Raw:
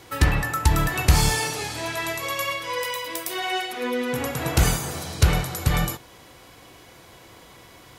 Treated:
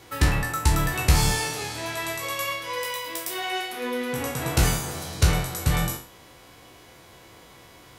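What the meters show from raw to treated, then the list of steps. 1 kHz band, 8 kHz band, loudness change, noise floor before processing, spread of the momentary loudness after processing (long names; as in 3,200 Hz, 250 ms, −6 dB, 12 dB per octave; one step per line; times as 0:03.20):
−2.0 dB, −0.5 dB, −1.5 dB, −49 dBFS, 8 LU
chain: peak hold with a decay on every bin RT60 0.42 s
level −3 dB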